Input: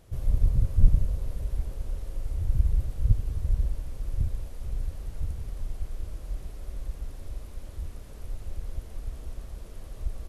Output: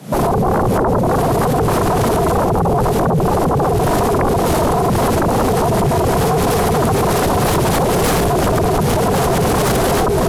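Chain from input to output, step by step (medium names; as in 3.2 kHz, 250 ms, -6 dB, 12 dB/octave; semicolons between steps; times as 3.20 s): recorder AGC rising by 79 dB/s; peak limiter -14.5 dBFS, peak gain reduction 10 dB; frequency shift +110 Hz; sine folder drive 18 dB, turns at -8.5 dBFS; trim -3 dB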